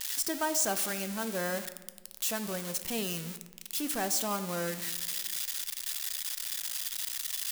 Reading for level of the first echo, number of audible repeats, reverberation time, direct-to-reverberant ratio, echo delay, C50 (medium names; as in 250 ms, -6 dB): no echo, no echo, 1.2 s, 10.0 dB, no echo, 12.0 dB